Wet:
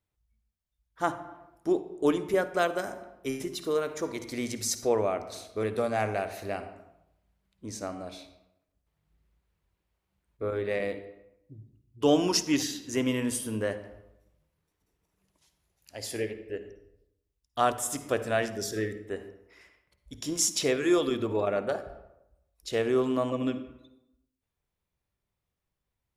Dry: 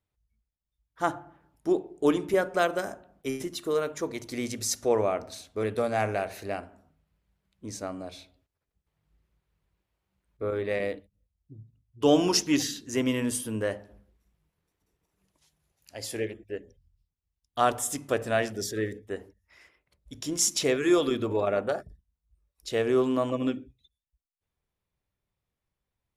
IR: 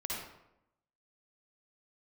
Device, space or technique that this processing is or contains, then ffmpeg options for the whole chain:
compressed reverb return: -filter_complex "[0:a]asplit=2[a][b];[1:a]atrim=start_sample=2205[c];[b][c]afir=irnorm=-1:irlink=0,acompressor=threshold=-26dB:ratio=6,volume=-9dB[d];[a][d]amix=inputs=2:normalize=0,volume=-2.5dB"

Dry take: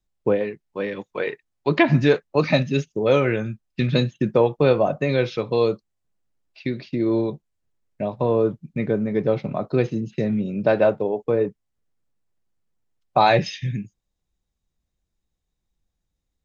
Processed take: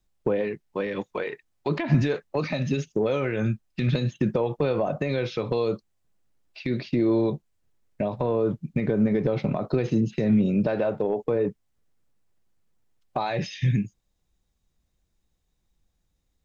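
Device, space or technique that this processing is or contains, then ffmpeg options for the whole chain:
de-esser from a sidechain: -filter_complex "[0:a]asplit=2[a][b];[b]highpass=f=4.4k:p=1,apad=whole_len=725032[c];[a][c]sidechaincompress=threshold=-45dB:ratio=4:attack=2.5:release=65,volume=5dB"

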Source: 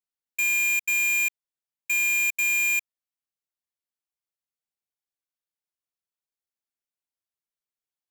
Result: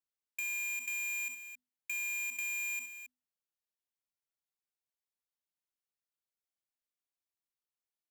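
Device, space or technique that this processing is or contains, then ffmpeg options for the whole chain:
de-esser from a sidechain: -filter_complex "[0:a]bandreject=f=50:t=h:w=6,bandreject=f=100:t=h:w=6,bandreject=f=150:t=h:w=6,bandreject=f=200:t=h:w=6,bandreject=f=250:t=h:w=6,aecho=1:1:65|66|270:0.126|0.119|0.112,asplit=2[a][b];[b]highpass=6.1k,apad=whole_len=382976[c];[a][c]sidechaincompress=threshold=-34dB:ratio=8:attack=3.3:release=29,volume=-5.5dB"

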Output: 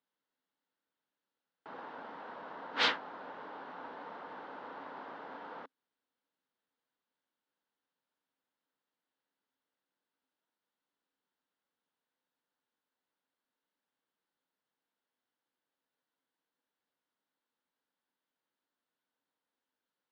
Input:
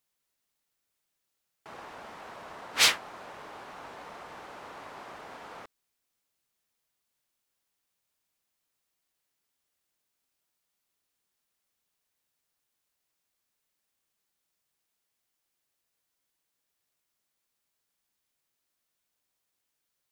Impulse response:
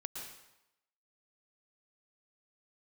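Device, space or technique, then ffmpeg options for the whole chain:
kitchen radio: -af "highpass=170,equalizer=f=180:t=q:w=4:g=4,equalizer=f=270:t=q:w=4:g=10,equalizer=f=490:t=q:w=4:g=6,equalizer=f=910:t=q:w=4:g=6,equalizer=f=1.5k:t=q:w=4:g=5,equalizer=f=2.4k:t=q:w=4:g=-6,lowpass=f=3.9k:w=0.5412,lowpass=f=3.9k:w=1.3066,volume=-5dB"

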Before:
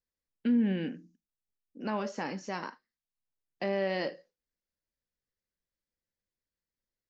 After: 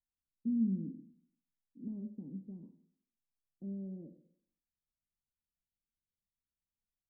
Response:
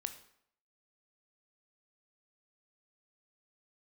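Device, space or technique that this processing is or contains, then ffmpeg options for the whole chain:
next room: -filter_complex "[0:a]lowpass=f=260:w=0.5412,lowpass=f=260:w=1.3066[a];[1:a]atrim=start_sample=2205[b];[a][b]afir=irnorm=-1:irlink=0,volume=-1.5dB"

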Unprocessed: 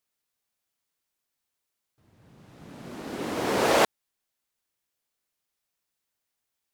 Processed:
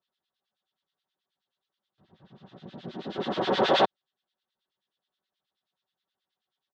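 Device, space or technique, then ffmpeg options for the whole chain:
guitar amplifier with harmonic tremolo: -filter_complex "[0:a]acrossover=split=1500[a][b];[a]aeval=exprs='val(0)*(1-1/2+1/2*cos(2*PI*9.4*n/s))':c=same[c];[b]aeval=exprs='val(0)*(1-1/2-1/2*cos(2*PI*9.4*n/s))':c=same[d];[c][d]amix=inputs=2:normalize=0,asoftclip=type=tanh:threshold=-21.5dB,highpass=92,equalizer=f=740:t=q:w=4:g=3,equalizer=f=2.3k:t=q:w=4:g=-9,equalizer=f=3.5k:t=q:w=4:g=8,lowpass=f=4.2k:w=0.5412,lowpass=f=4.2k:w=1.3066,asettb=1/sr,asplit=3[e][f][g];[e]atrim=end=2.584[h];[f]atrim=start=2.58:end=3.16,asetpts=PTS-STARTPTS,afade=t=in:d=0.004:c=qsin,afade=t=out:st=0.576:d=0.004:c=qsin,equalizer=f=1.1k:w=1.1:g=-5.5[i];[g]atrim=start=3.156[j];[h][i]acrossfade=d=0.004:c1=hsin:c2=qsin[k];[k][j]acrossfade=d=0.004:c1=qsin:c2=hsin,aecho=1:1:5.3:0.45,volume=5dB"

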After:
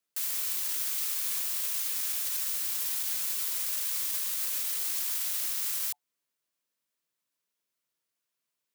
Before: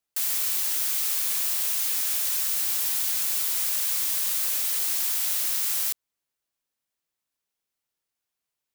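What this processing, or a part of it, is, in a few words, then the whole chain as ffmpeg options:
PA system with an anti-feedback notch: -af "highpass=f=120:w=0.5412,highpass=f=120:w=1.3066,asuperstop=centerf=790:order=20:qfactor=6,alimiter=limit=-22dB:level=0:latency=1:release=24"

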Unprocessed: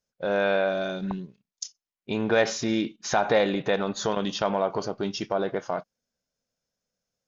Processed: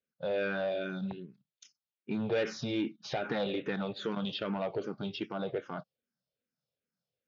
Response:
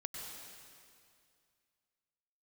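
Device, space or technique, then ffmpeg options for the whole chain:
barber-pole phaser into a guitar amplifier: -filter_complex "[0:a]asplit=2[a][b];[b]afreqshift=-2.5[c];[a][c]amix=inputs=2:normalize=1,asoftclip=type=tanh:threshold=-22dB,highpass=99,equalizer=f=140:t=q:w=4:g=5,equalizer=f=700:t=q:w=4:g=-4,equalizer=f=1k:t=q:w=4:g=-8,equalizer=f=1.9k:t=q:w=4:g=-4,lowpass=f=4.4k:w=0.5412,lowpass=f=4.4k:w=1.3066,volume=-1.5dB"

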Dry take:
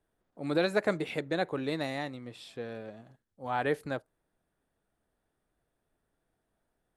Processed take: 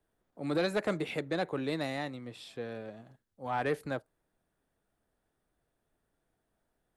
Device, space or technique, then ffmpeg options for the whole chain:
one-band saturation: -filter_complex "[0:a]acrossover=split=210|4200[a][b][c];[b]asoftclip=type=tanh:threshold=-23.5dB[d];[a][d][c]amix=inputs=3:normalize=0"

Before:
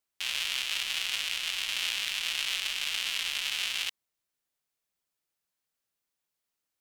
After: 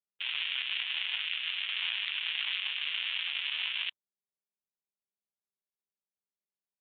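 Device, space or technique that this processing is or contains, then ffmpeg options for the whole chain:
mobile call with aggressive noise cancelling: -filter_complex "[0:a]asettb=1/sr,asplit=3[a][b][c];[a]atrim=end=2.304[d];[b]atrim=start=2.3:end=2.9,asetpts=PTS-STARTPTS,afade=t=in:d=0.004:c=qsin,afade=t=out:st=0.596:d=0.004:c=qsin,equalizer=f=220:t=o:w=0.5:g=3.5[e];[c]atrim=start=2.896[f];[d][e]acrossfade=d=0.004:c1=hsin:c2=qsin[g];[g][f]acrossfade=d=0.004:c1=qsin:c2=hsin,highpass=f=160:w=0.5412,highpass=f=160:w=1.3066,afftdn=nr=17:nf=-48" -ar 8000 -c:a libopencore_amrnb -b:a 12200

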